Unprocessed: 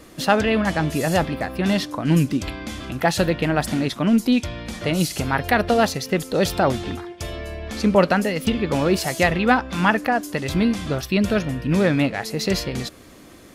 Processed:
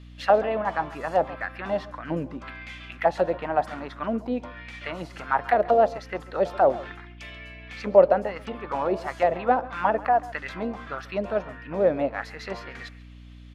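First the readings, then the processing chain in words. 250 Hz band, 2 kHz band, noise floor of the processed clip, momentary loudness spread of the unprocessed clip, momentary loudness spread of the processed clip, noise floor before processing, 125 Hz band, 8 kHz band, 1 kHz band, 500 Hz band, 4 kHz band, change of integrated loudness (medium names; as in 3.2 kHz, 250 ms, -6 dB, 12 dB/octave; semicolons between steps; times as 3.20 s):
-13.5 dB, -8.5 dB, -45 dBFS, 11 LU, 17 LU, -45 dBFS, -16.0 dB, under -20 dB, -0.5 dB, -0.5 dB, -15.5 dB, -4.5 dB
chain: auto-wah 590–3400 Hz, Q 2.7, down, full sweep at -14 dBFS; hum 60 Hz, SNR 19 dB; on a send: delay 137 ms -19 dB; on the sum: tape noise reduction on one side only decoder only; trim +3.5 dB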